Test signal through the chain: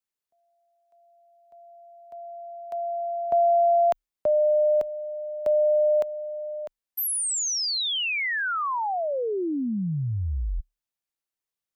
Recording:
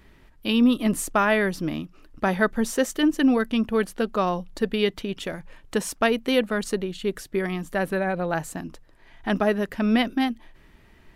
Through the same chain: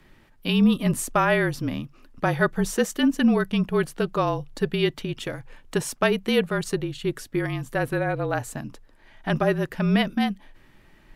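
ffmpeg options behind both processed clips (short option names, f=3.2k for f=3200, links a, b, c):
-af "afreqshift=-36"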